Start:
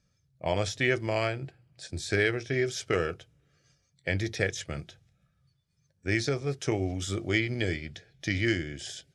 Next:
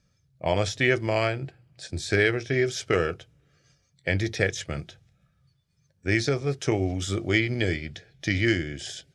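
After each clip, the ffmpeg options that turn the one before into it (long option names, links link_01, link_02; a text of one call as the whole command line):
ffmpeg -i in.wav -af "highshelf=frequency=9000:gain=-5,volume=4dB" out.wav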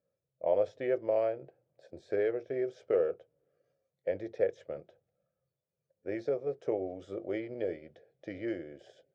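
ffmpeg -i in.wav -af "bandpass=frequency=530:width_type=q:width=4.4:csg=0,volume=2dB" out.wav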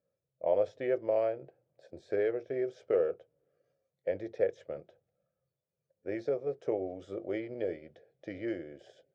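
ffmpeg -i in.wav -af anull out.wav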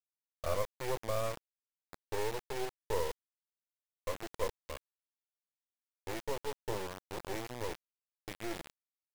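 ffmpeg -i in.wav -filter_complex "[0:a]asplit=2[link_01][link_02];[link_02]asoftclip=type=tanh:threshold=-26.5dB,volume=-7dB[link_03];[link_01][link_03]amix=inputs=2:normalize=0,acrusher=bits=3:dc=4:mix=0:aa=0.000001,volume=-4dB" out.wav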